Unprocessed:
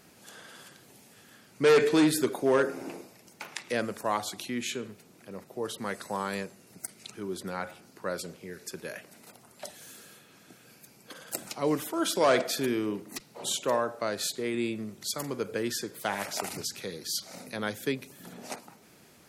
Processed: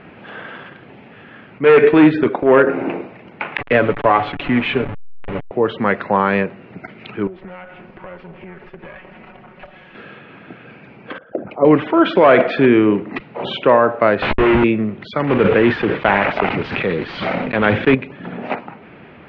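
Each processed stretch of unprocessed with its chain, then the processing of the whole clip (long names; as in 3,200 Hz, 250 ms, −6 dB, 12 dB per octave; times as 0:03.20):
0:00.58–0:02.67: noise gate with hold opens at −45 dBFS, closes at −53 dBFS + transient designer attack −11 dB, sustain −6 dB
0:03.57–0:05.51: hold until the input has moved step −37 dBFS + comb filter 7 ms, depth 54%
0:07.27–0:09.95: lower of the sound and its delayed copy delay 5.4 ms + parametric band 3,800 Hz −4 dB 0.21 octaves + downward compressor 5 to 1, threshold −50 dBFS
0:11.18–0:11.65: spectral envelope exaggerated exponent 2 + head-to-tape spacing loss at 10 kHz 39 dB + multiband upward and downward expander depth 70%
0:14.22–0:14.64: comparator with hysteresis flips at −34 dBFS + double-tracking delay 14 ms −5.5 dB
0:15.27–0:17.95: one scale factor per block 3 bits + level that may fall only so fast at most 32 dB per second
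whole clip: Butterworth low-pass 2,800 Hz 36 dB per octave; boost into a limiter +18.5 dB; level −1 dB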